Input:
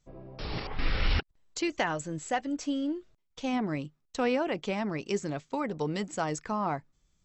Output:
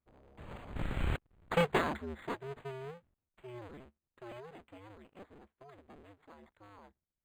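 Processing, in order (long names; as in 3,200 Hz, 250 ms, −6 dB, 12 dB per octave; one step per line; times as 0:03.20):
sub-harmonics by changed cycles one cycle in 2, inverted
source passing by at 0:01.60, 12 m/s, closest 2.4 metres
linearly interpolated sample-rate reduction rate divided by 8×
level +2.5 dB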